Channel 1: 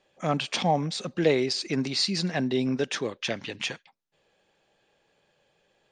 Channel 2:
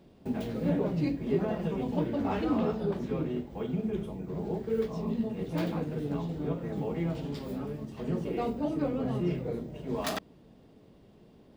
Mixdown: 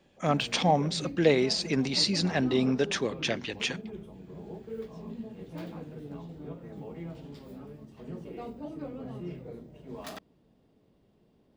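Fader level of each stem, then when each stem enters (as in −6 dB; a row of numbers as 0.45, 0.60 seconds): 0.0, −9.0 decibels; 0.00, 0.00 seconds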